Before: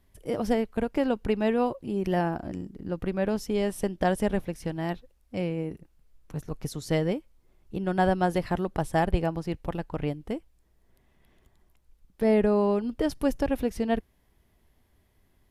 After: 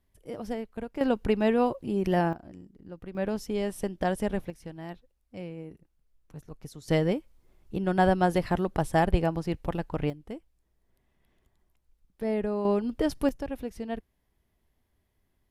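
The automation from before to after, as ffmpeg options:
ffmpeg -i in.wav -af "asetnsamples=nb_out_samples=441:pad=0,asendcmd='1.01 volume volume 1dB;2.33 volume volume -11.5dB;3.15 volume volume -3dB;4.5 volume volume -9.5dB;6.88 volume volume 1dB;10.1 volume volume -7dB;12.65 volume volume 0dB;13.29 volume volume -8dB',volume=-8.5dB" out.wav

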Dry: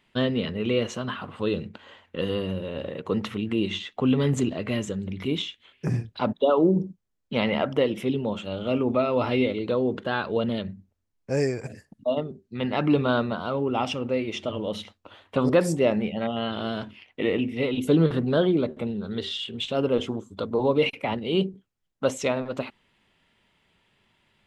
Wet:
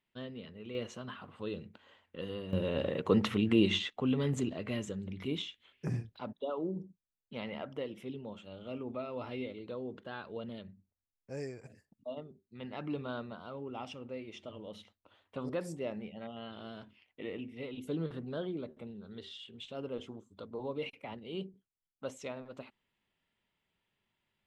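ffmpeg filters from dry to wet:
ffmpeg -i in.wav -af "asetnsamples=nb_out_samples=441:pad=0,asendcmd='0.75 volume volume -13dB;2.53 volume volume -0.5dB;3.9 volume volume -9dB;6.16 volume volume -16.5dB',volume=-19.5dB" out.wav

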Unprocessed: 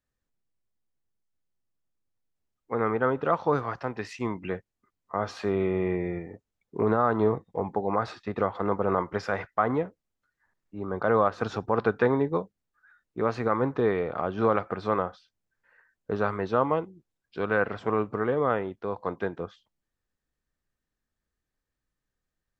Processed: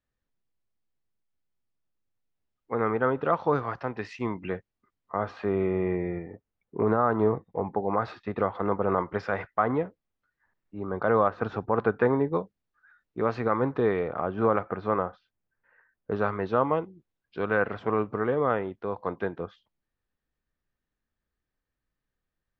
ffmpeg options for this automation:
ffmpeg -i in.wav -af "asetnsamples=nb_out_samples=441:pad=0,asendcmd='5.23 lowpass f 2400;7.96 lowpass f 3500;11.28 lowpass f 2300;12.33 lowpass f 4300;14.08 lowpass f 2200;16.12 lowpass f 3800',lowpass=4300" out.wav

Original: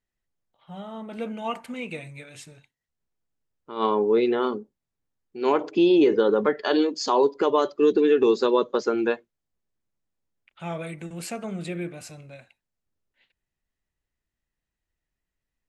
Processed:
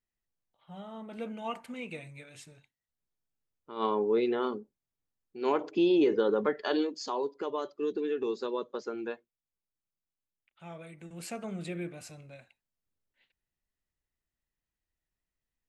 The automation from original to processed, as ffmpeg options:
ffmpeg -i in.wav -af "volume=1dB,afade=type=out:start_time=6.66:duration=0.54:silence=0.473151,afade=type=in:start_time=10.94:duration=0.42:silence=0.421697" out.wav

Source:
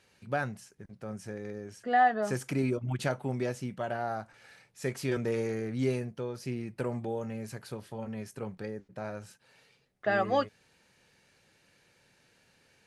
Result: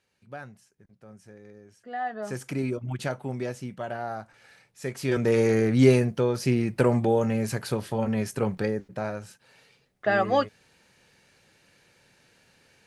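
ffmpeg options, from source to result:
ffmpeg -i in.wav -af "volume=12dB,afade=type=in:start_time=2:duration=0.48:silence=0.334965,afade=type=in:start_time=4.94:duration=0.65:silence=0.266073,afade=type=out:start_time=8.59:duration=0.63:silence=0.421697" out.wav

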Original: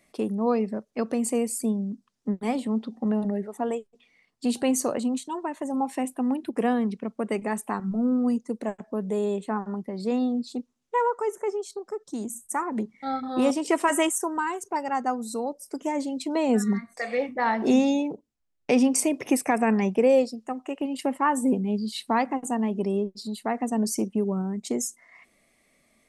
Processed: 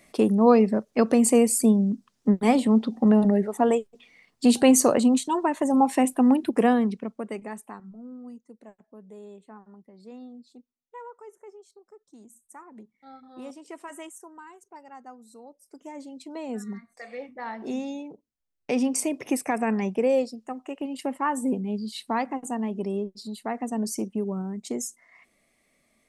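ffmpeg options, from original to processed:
ffmpeg -i in.wav -af "volume=22dB,afade=type=out:start_time=6.31:duration=0.94:silence=0.237137,afade=type=out:start_time=7.25:duration=0.72:silence=0.237137,afade=type=in:start_time=15.39:duration=0.73:silence=0.446684,afade=type=in:start_time=18.06:duration=0.9:silence=0.398107" out.wav

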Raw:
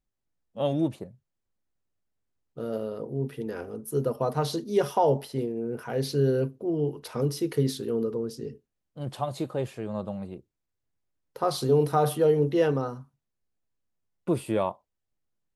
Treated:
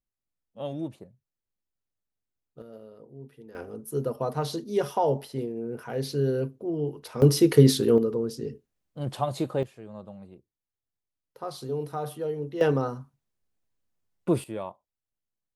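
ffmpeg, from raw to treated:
ffmpeg -i in.wav -af "asetnsamples=nb_out_samples=441:pad=0,asendcmd='2.62 volume volume -14.5dB;3.55 volume volume -2dB;7.22 volume volume 9dB;7.98 volume volume 2.5dB;9.63 volume volume -9.5dB;12.61 volume volume 2dB;14.44 volume volume -8.5dB',volume=-7.5dB" out.wav

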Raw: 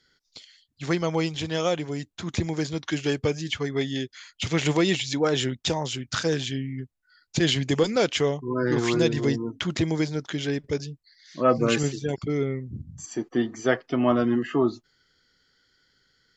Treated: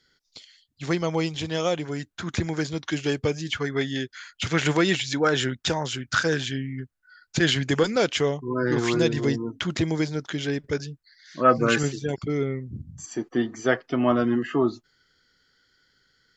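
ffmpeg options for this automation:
ffmpeg -i in.wav -af "asetnsamples=nb_out_samples=441:pad=0,asendcmd='1.85 equalizer g 9.5;2.62 equalizer g 1;3.54 equalizer g 10;7.88 equalizer g 2.5;10.65 equalizer g 9.5;11.85 equalizer g 2.5',equalizer=frequency=1500:width_type=o:width=0.55:gain=-0.5" out.wav

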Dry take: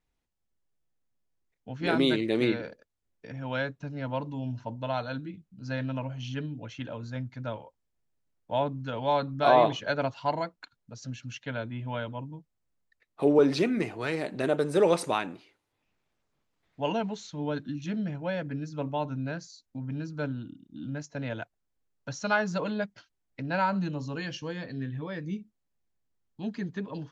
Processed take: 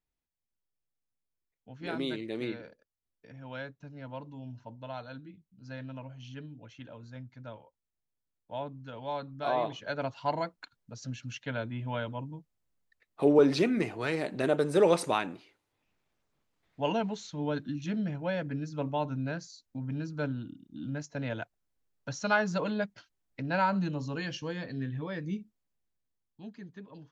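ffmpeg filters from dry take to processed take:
ffmpeg -i in.wav -af "volume=-0.5dB,afade=type=in:start_time=9.69:duration=0.82:silence=0.354813,afade=type=out:start_time=25.39:duration=1.14:silence=0.266073" out.wav

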